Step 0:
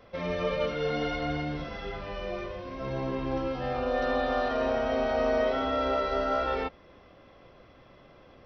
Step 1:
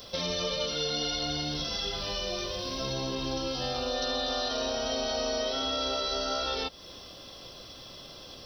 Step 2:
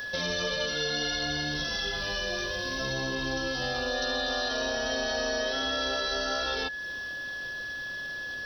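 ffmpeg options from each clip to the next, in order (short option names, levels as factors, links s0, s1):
-af "aexciter=amount=15.8:drive=3.3:freq=3300,acompressor=threshold=0.0178:ratio=3,volume=1.58"
-af "aeval=exprs='val(0)+0.02*sin(2*PI*1700*n/s)':c=same"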